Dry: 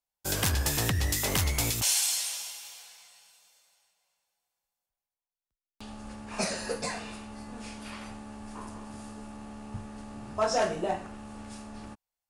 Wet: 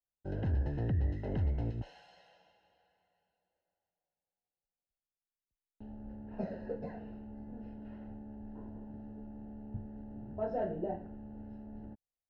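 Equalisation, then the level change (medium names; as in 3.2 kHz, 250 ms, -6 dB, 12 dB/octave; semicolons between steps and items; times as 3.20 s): boxcar filter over 38 samples; distance through air 280 m; -2.0 dB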